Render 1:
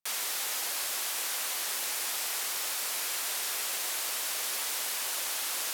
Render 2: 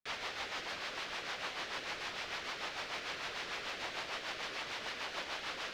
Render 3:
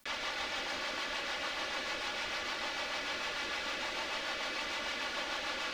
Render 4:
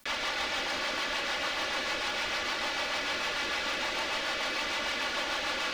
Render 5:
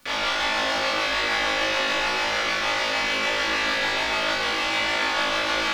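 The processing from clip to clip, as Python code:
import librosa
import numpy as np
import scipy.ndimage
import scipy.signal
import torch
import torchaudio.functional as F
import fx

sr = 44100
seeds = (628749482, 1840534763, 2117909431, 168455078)

y1 = scipy.ndimage.median_filter(x, 3, mode='constant')
y1 = fx.rotary(y1, sr, hz=6.7)
y1 = fx.air_absorb(y1, sr, metres=240.0)
y1 = F.gain(torch.from_numpy(y1), 3.0).numpy()
y2 = y1 + 0.59 * np.pad(y1, (int(3.5 * sr / 1000.0), 0))[:len(y1)]
y2 = y2 + 10.0 ** (-5.0 / 20.0) * np.pad(y2, (int(177 * sr / 1000.0), 0))[:len(y2)]
y2 = fx.env_flatten(y2, sr, amount_pct=50)
y3 = np.clip(10.0 ** (30.5 / 20.0) * y2, -1.0, 1.0) / 10.0 ** (30.5 / 20.0)
y3 = F.gain(torch.from_numpy(y3), 5.5).numpy()
y4 = fx.high_shelf(y3, sr, hz=5400.0, db=-5.5)
y4 = fx.room_flutter(y4, sr, wall_m=3.2, rt60_s=0.78)
y4 = F.gain(torch.from_numpy(y4), 3.5).numpy()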